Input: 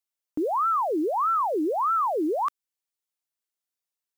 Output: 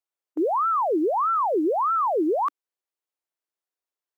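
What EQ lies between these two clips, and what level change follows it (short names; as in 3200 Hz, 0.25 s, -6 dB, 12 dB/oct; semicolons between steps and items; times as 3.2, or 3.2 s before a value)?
brick-wall FIR high-pass 290 Hz; high shelf 2100 Hz -11.5 dB; +4.0 dB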